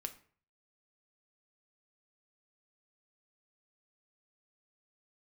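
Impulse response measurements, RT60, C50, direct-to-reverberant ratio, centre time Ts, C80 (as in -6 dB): 0.50 s, 14.5 dB, 6.5 dB, 7 ms, 18.5 dB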